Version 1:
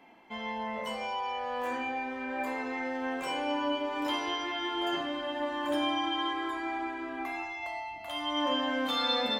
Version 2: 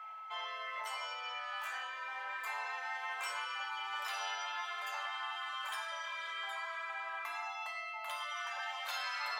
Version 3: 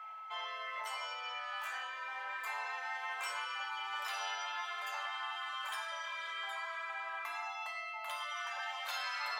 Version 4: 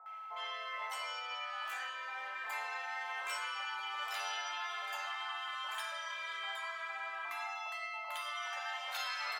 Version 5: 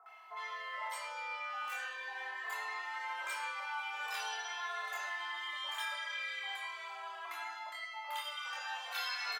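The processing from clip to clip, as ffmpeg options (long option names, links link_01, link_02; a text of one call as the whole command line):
ffmpeg -i in.wav -af "aeval=exprs='val(0)+0.00501*sin(2*PI*1300*n/s)':channel_layout=same,afftfilt=real='re*lt(hypot(re,im),0.0708)':imag='im*lt(hypot(re,im),0.0708)':win_size=1024:overlap=0.75,highpass=frequency=780:width=0.5412,highpass=frequency=780:width=1.3066,volume=1dB" out.wav
ffmpeg -i in.wav -af anull out.wav
ffmpeg -i in.wav -filter_complex "[0:a]acrossover=split=1100[link_01][link_02];[link_02]adelay=60[link_03];[link_01][link_03]amix=inputs=2:normalize=0,volume=1dB" out.wav
ffmpeg -i in.wav -filter_complex "[0:a]asplit=2[link_01][link_02];[link_02]adelay=25,volume=-3dB[link_03];[link_01][link_03]amix=inputs=2:normalize=0,asplit=2[link_04][link_05];[link_05]adelay=2.3,afreqshift=-0.43[link_06];[link_04][link_06]amix=inputs=2:normalize=1,volume=2.5dB" out.wav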